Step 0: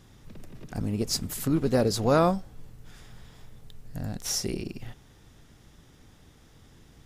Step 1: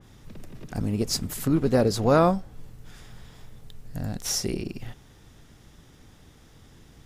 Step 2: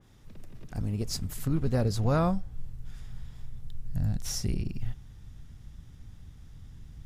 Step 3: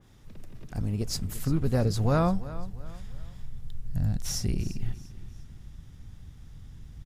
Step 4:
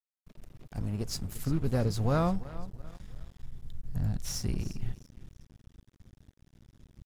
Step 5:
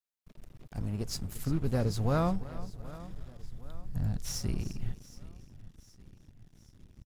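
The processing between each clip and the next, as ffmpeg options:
-af "adynamicequalizer=threshold=0.00562:dfrequency=2800:dqfactor=0.7:tfrequency=2800:tqfactor=0.7:attack=5:release=100:ratio=0.375:range=2:mode=cutabove:tftype=highshelf,volume=2.5dB"
-af "asubboost=boost=7:cutoff=150,volume=-7.5dB"
-af "aecho=1:1:345|690|1035:0.15|0.0569|0.0216,volume=1.5dB"
-af "aeval=exprs='sgn(val(0))*max(abs(val(0))-0.00708,0)':c=same,volume=-2.5dB"
-af "aecho=1:1:769|1538|2307|3076:0.112|0.0583|0.0303|0.0158,volume=-1dB"

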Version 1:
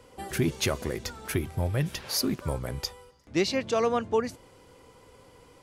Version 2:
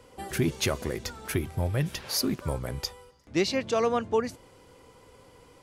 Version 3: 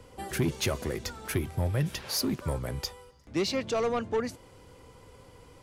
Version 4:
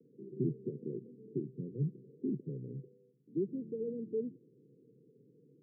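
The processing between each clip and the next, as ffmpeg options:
-af anull
-filter_complex "[0:a]acrossover=split=150[a][b];[a]acompressor=mode=upward:threshold=-48dB:ratio=2.5[c];[b]asoftclip=type=tanh:threshold=-22dB[d];[c][d]amix=inputs=2:normalize=0"
-af "asuperpass=centerf=240:order=20:qfactor=0.72,volume=-5dB"

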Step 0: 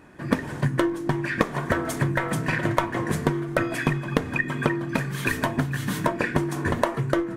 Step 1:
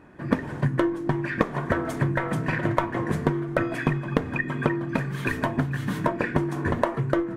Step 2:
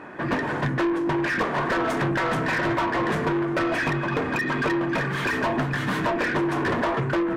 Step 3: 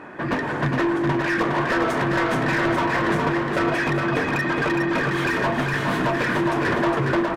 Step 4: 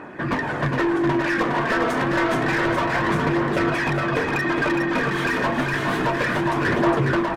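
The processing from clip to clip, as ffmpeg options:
-af "highshelf=f=3.4k:g=-11.5"
-filter_complex "[0:a]asplit=2[a][b];[b]highpass=f=720:p=1,volume=31dB,asoftclip=type=tanh:threshold=-7dB[c];[a][c]amix=inputs=2:normalize=0,lowpass=f=2.1k:p=1,volume=-6dB,volume=-8dB"
-af "aecho=1:1:412|824|1236|1648|2060:0.631|0.227|0.0818|0.0294|0.0106,volume=1dB"
-af "aphaser=in_gain=1:out_gain=1:delay=4.6:decay=0.28:speed=0.29:type=triangular"

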